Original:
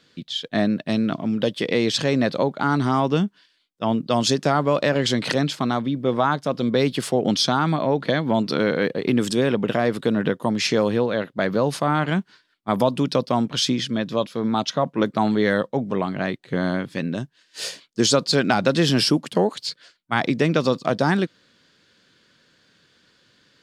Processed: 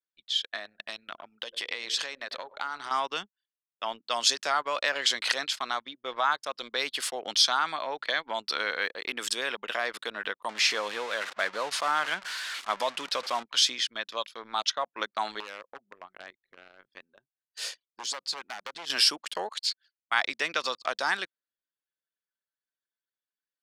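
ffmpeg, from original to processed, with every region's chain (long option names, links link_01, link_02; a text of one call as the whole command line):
ffmpeg -i in.wav -filter_complex "[0:a]asettb=1/sr,asplit=3[link_01][link_02][link_03];[link_01]atrim=end=0.474[link_04];[link_02]atrim=start=0.47:end=2.91,asetpts=PTS-STARTPTS,afade=type=in:duration=0.004:curve=qsin,afade=type=out:start_time=2.436:duration=0.004:curve=qsin,bandreject=frequency=50:width_type=h:width=6,bandreject=frequency=100:width_type=h:width=6,bandreject=frequency=150:width_type=h:width=6,bandreject=frequency=200:width_type=h:width=6,bandreject=frequency=250:width_type=h:width=6,bandreject=frequency=300:width_type=h:width=6,bandreject=frequency=350:width_type=h:width=6,bandreject=frequency=400:width_type=h:width=6,bandreject=frequency=450:width_type=h:width=6,asplit=2[link_05][link_06];[link_06]adelay=96,lowpass=frequency=2100:poles=1,volume=-16dB,asplit=2[link_07][link_08];[link_08]adelay=96,lowpass=frequency=2100:poles=1,volume=0.38,asplit=2[link_09][link_10];[link_10]adelay=96,lowpass=frequency=2100:poles=1,volume=0.38[link_11];[link_05][link_07][link_09][link_11]amix=inputs=4:normalize=0,atrim=end_sample=107604,acompressor=threshold=-22dB:ratio=12:attack=3.2:release=140:knee=1:detection=peak[link_12];[link_03]atrim=start=2.906[link_13];[link_04][link_12]acrossfade=duration=0.004:curve1=hsin:curve2=qsin[link_14];[link_14][link_13]acrossfade=duration=0.004:curve1=qsin:curve2=hsin,asettb=1/sr,asplit=3[link_15][link_16][link_17];[link_15]atrim=end=10.494[link_18];[link_16]atrim=start=10.49:end=13.43,asetpts=PTS-STARTPTS,afade=type=in:duration=0.004:curve=qsin,afade=type=out:start_time=2.936:duration=0.004:curve=qsin,aeval=exprs='val(0)+0.5*0.0447*sgn(val(0))':channel_layout=same,lowpass=9100,highshelf=frequency=4200:gain=-4[link_19];[link_17]atrim=start=13.426[link_20];[link_18][link_19]acrossfade=duration=0.004:curve1=hsin:curve2=qsin[link_21];[link_21][link_20]acrossfade=duration=0.004:curve1=qsin:curve2=hsin,asettb=1/sr,asplit=3[link_22][link_23][link_24];[link_22]atrim=end=15.404[link_25];[link_23]atrim=start=15.4:end=18.9,asetpts=PTS-STARTPTS,afade=type=in:duration=0.004:curve=qsin,afade=type=out:start_time=3.496:duration=0.004:curve=qsin,tiltshelf=frequency=790:gain=5.5,aeval=exprs='0.282*(abs(mod(val(0)/0.282+3,4)-2)-1)':channel_layout=same,acompressor=threshold=-26dB:ratio=6:attack=3.2:release=140:knee=1:detection=peak[link_26];[link_24]atrim=start=18.896[link_27];[link_25][link_26]acrossfade=duration=0.004:curve1=hsin:curve2=qsin[link_28];[link_28][link_27]acrossfade=duration=0.004:curve1=qsin:curve2=hsin,highpass=1200,anlmdn=0.158" out.wav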